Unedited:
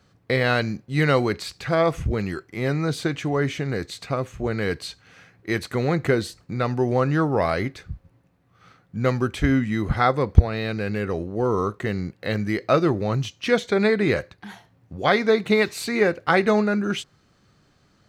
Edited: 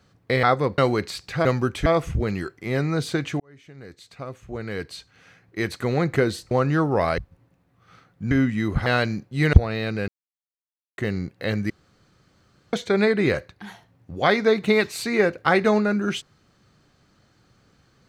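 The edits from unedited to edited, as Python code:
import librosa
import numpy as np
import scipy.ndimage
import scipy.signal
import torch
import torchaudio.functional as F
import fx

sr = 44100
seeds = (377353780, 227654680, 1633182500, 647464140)

y = fx.edit(x, sr, fx.swap(start_s=0.43, length_s=0.67, other_s=10.0, other_length_s=0.35),
    fx.fade_in_span(start_s=3.31, length_s=2.58),
    fx.cut(start_s=6.42, length_s=0.5),
    fx.cut(start_s=7.59, length_s=0.32),
    fx.move(start_s=9.04, length_s=0.41, to_s=1.77),
    fx.silence(start_s=10.9, length_s=0.9),
    fx.room_tone_fill(start_s=12.52, length_s=1.03), tone=tone)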